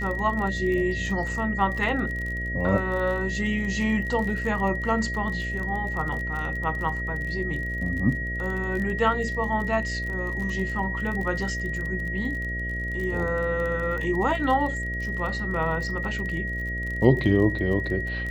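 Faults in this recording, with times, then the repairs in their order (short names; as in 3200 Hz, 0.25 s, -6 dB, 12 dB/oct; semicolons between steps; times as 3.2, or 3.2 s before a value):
buzz 60 Hz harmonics 11 -32 dBFS
crackle 31/s -31 dBFS
tone 1900 Hz -30 dBFS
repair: de-click; de-hum 60 Hz, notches 11; notch 1900 Hz, Q 30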